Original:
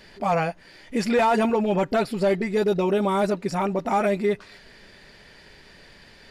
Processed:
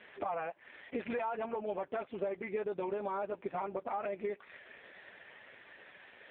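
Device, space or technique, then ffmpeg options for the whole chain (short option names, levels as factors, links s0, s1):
voicemail: -af "highpass=420,lowpass=3300,acompressor=threshold=0.0178:ratio=10,volume=1.33" -ar 8000 -c:a libopencore_amrnb -b:a 5150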